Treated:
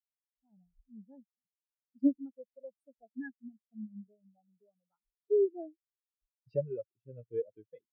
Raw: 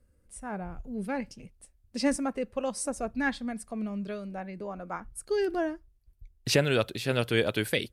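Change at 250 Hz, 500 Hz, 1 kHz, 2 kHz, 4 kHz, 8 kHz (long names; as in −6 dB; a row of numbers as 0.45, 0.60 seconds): −6.0 dB, −5.0 dB, below −25 dB, −24.0 dB, below −40 dB, below −40 dB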